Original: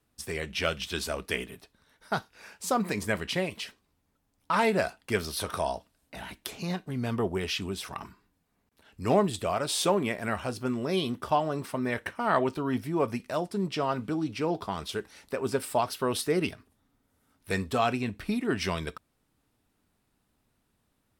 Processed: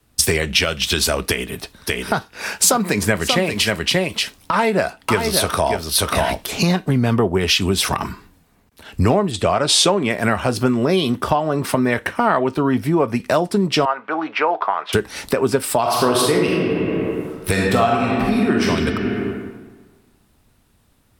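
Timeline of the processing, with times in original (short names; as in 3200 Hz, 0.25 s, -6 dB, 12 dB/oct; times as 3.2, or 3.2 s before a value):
1.28–6.54 echo 0.585 s -8.5 dB
9.31–10.1 LPF 7600 Hz
13.85–14.93 Butterworth band-pass 1200 Hz, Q 0.84
15.8–18.64 reverb throw, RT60 1.7 s, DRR -3 dB
whole clip: compressor 12:1, threshold -40 dBFS; maximiser +30 dB; three-band expander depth 40%; gain -4 dB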